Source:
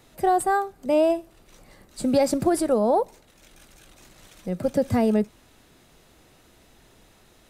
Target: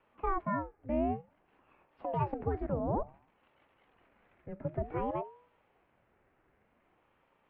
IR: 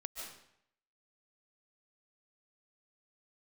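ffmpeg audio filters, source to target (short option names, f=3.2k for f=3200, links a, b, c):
-af "bandreject=f=139.4:t=h:w=4,bandreject=f=278.8:t=h:w=4,bandreject=f=418.2:t=h:w=4,bandreject=f=557.6:t=h:w=4,bandreject=f=697:t=h:w=4,highpass=f=240:t=q:w=0.5412,highpass=f=240:t=q:w=1.307,lowpass=f=2.4k:t=q:w=0.5176,lowpass=f=2.4k:t=q:w=0.7071,lowpass=f=2.4k:t=q:w=1.932,afreqshift=-170,aeval=exprs='val(0)*sin(2*PI*460*n/s+460*0.6/0.55*sin(2*PI*0.55*n/s))':c=same,volume=-8.5dB"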